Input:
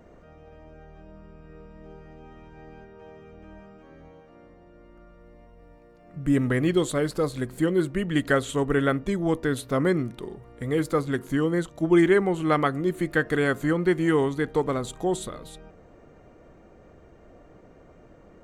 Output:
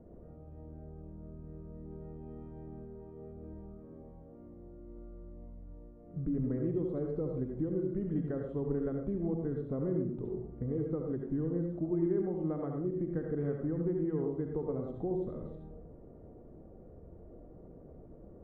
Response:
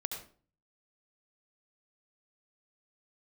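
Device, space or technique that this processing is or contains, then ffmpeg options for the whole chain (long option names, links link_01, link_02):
television next door: -filter_complex "[0:a]asettb=1/sr,asplit=3[link_01][link_02][link_03];[link_01]atrim=end=1.914[link_04];[link_02]atrim=start=1.91:end=2.68,asetpts=PTS-STARTPTS,afade=type=in:duration=0.004:curve=qsin,afade=type=out:start_time=0.766:duration=0.004:curve=qsin,highshelf=frequency=2700:gain=10.5[link_05];[link_03]atrim=start=2.676[link_06];[link_04][link_05]acrossfade=duration=0.004:curve1=hsin:curve2=qsin[link_07];[link_07][link_06]acrossfade=duration=0.004:curve1=qsin:curve2=hsin,acompressor=threshold=-32dB:ratio=3,lowpass=480[link_08];[1:a]atrim=start_sample=2205[link_09];[link_08][link_09]afir=irnorm=-1:irlink=0"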